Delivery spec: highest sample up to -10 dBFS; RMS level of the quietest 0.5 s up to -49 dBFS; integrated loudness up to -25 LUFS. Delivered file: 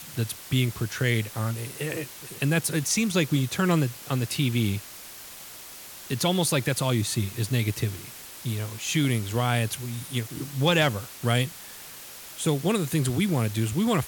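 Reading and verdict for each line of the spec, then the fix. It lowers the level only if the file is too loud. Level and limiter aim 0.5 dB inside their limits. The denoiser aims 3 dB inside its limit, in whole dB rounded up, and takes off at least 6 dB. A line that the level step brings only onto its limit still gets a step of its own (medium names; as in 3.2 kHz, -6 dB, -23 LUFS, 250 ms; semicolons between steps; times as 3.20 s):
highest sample -7.5 dBFS: fail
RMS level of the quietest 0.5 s -43 dBFS: fail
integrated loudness -26.5 LUFS: pass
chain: noise reduction 9 dB, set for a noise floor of -43 dBFS; peak limiter -10.5 dBFS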